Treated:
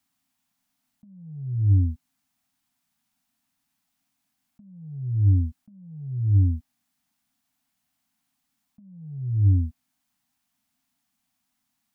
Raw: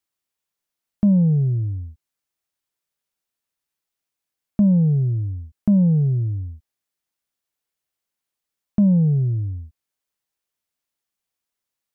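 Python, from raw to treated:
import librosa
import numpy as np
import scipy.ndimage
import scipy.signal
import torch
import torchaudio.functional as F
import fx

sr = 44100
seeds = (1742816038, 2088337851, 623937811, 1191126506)

y = scipy.signal.sosfilt(scipy.signal.ellip(3, 1.0, 40, [270.0, 690.0], 'bandstop', fs=sr, output='sos'), x)
y = fx.peak_eq(y, sr, hz=270.0, db=14.0, octaves=2.0)
y = fx.over_compress(y, sr, threshold_db=-21.0, ratio=-0.5)
y = y * 10.0 ** (-3.5 / 20.0)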